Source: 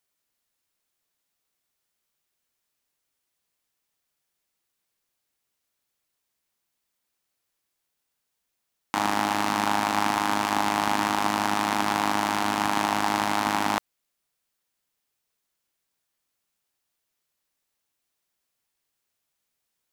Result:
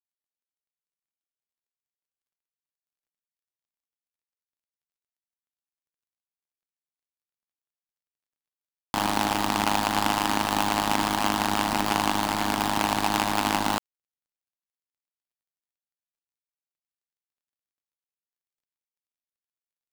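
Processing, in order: switching dead time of 0.21 ms; gain +2.5 dB

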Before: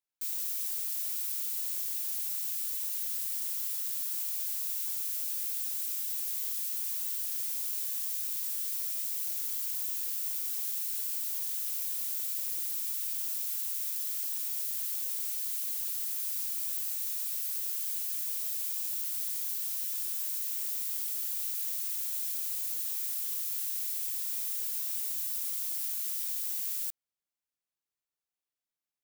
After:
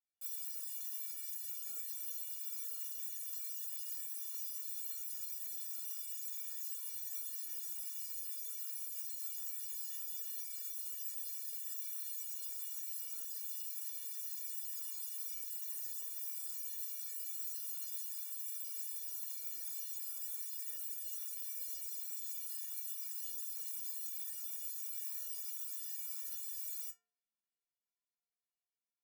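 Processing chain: metallic resonator 210 Hz, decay 0.73 s, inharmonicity 0.03; gain +7.5 dB

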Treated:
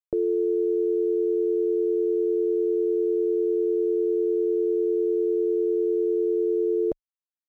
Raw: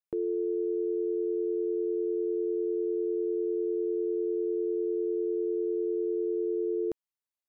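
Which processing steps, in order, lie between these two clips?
bell 590 Hz +11.5 dB 0.61 oct; requantised 10-bit, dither none; tilt -2.5 dB/oct

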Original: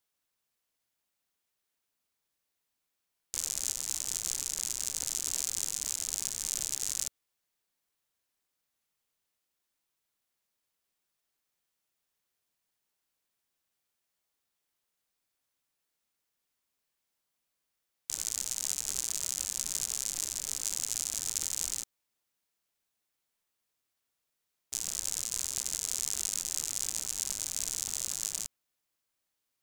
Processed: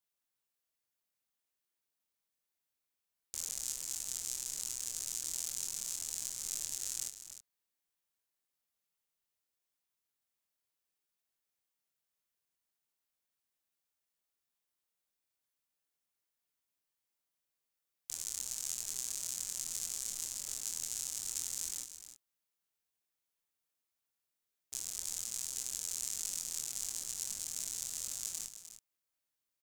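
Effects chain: high shelf 8400 Hz +4 dB; doubler 24 ms -5 dB; echo 0.304 s -11 dB; gain -8.5 dB

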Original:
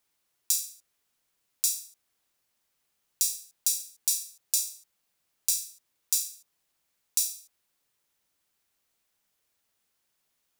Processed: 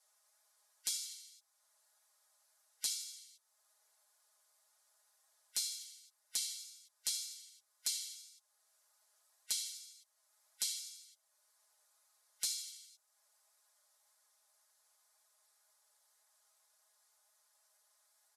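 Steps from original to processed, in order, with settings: steep high-pass 990 Hz 36 dB/oct; bell 4700 Hz -12.5 dB 0.97 oct; spectral gate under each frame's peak -25 dB strong; compressor 2:1, threshold -51 dBFS, peak gain reduction 15 dB; speed mistake 78 rpm record played at 45 rpm; flange 1.9 Hz, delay 7.1 ms, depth 6.7 ms, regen -1%; comb 4.8 ms, depth 96%; gain +5 dB

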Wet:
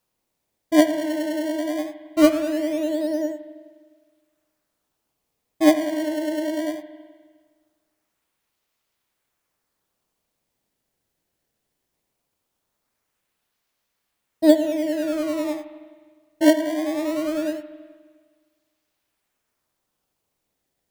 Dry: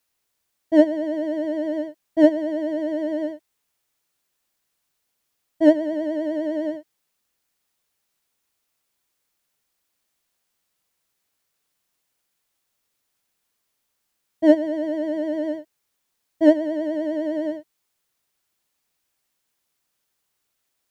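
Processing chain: in parallel at -3.5 dB: decimation with a swept rate 20×, swing 160% 0.2 Hz; on the sum: reverb RT60 1.6 s, pre-delay 35 ms, DRR 11 dB; gain -4 dB

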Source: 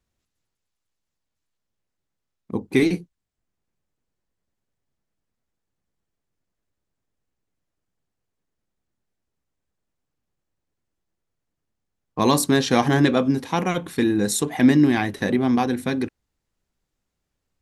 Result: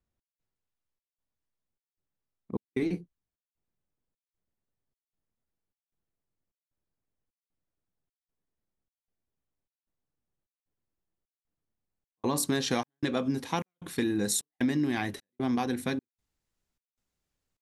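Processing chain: high shelf 2400 Hz -9 dB, from 12.36 s +4 dB; compressor 6:1, threshold -18 dBFS, peak gain reduction 8 dB; step gate "xx..xxxx" 152 bpm -60 dB; gain -6 dB

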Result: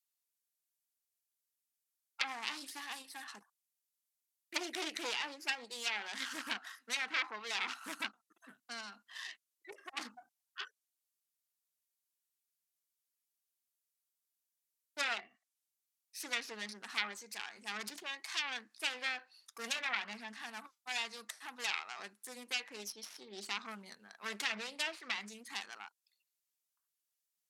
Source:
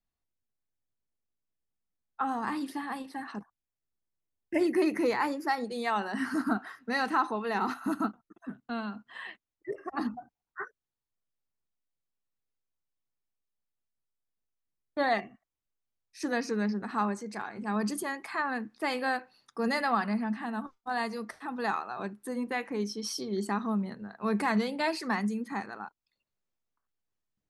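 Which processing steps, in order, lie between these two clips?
self-modulated delay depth 0.48 ms; differentiator; treble ducked by the level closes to 2100 Hz, closed at -36 dBFS; gain +7.5 dB

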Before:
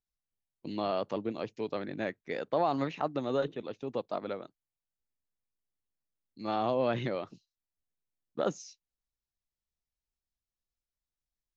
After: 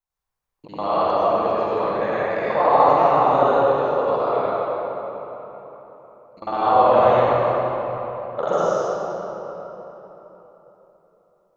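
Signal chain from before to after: local time reversal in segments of 49 ms; graphic EQ 250/500/1000/4000 Hz -8/+4/+11/-3 dB; reverb RT60 3.9 s, pre-delay 73 ms, DRR -10 dB

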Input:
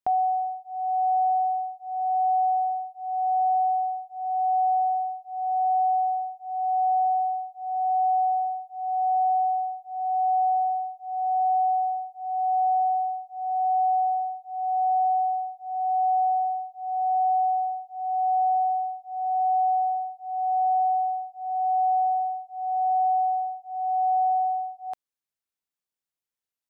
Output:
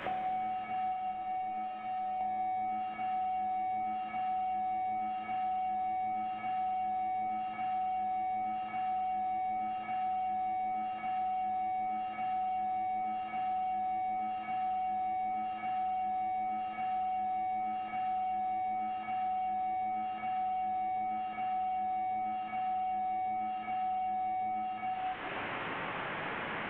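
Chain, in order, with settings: delta modulation 16 kbps, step -36 dBFS; 0.92–2.21 resonator 610 Hz, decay 0.32 s, mix 90%; compressor 3:1, threshold -38 dBFS, peak gain reduction 10 dB; reverb RT60 2.3 s, pre-delay 7 ms, DRR -7 dB; three-band squash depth 100%; gain -8.5 dB

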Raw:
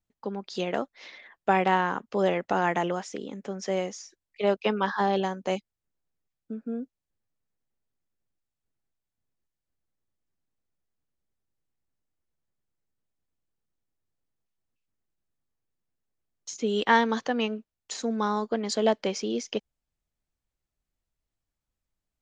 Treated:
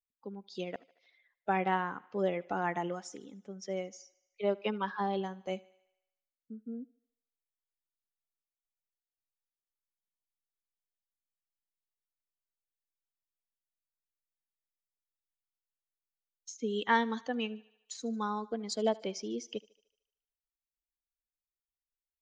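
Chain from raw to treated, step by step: per-bin expansion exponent 1.5; 0.76–1.61 fade in; 2.88–3.38 high shelf 3400 Hz +7.5 dB; thinning echo 75 ms, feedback 60%, high-pass 320 Hz, level -22 dB; gain -5 dB

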